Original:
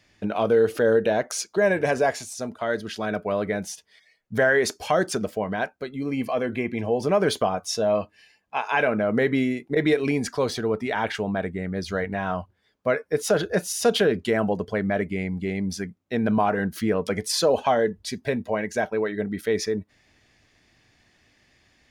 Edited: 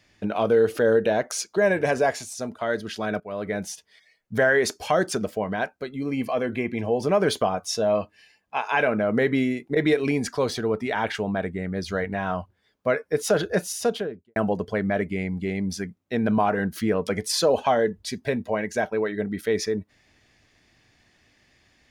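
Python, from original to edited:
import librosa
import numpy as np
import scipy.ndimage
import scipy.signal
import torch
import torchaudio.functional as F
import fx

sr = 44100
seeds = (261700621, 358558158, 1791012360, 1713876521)

y = fx.studio_fade_out(x, sr, start_s=13.59, length_s=0.77)
y = fx.edit(y, sr, fx.fade_in_from(start_s=3.2, length_s=0.41, floor_db=-15.0), tone=tone)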